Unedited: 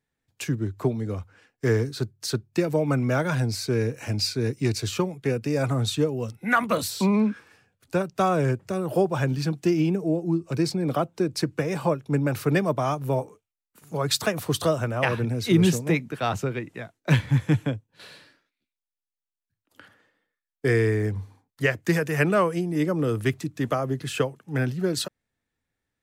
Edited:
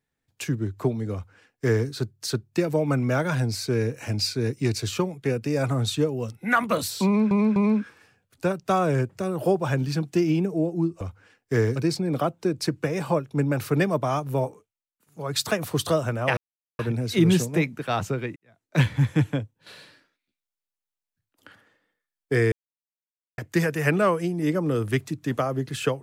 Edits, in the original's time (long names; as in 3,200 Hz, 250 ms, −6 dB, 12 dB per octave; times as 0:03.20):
0:01.13–0:01.88: duplicate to 0:10.51
0:07.06–0:07.31: repeat, 3 plays
0:13.22–0:14.24: duck −13 dB, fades 0.43 s
0:15.12: splice in silence 0.42 s
0:16.69–0:17.13: fade in quadratic
0:20.85–0:21.71: silence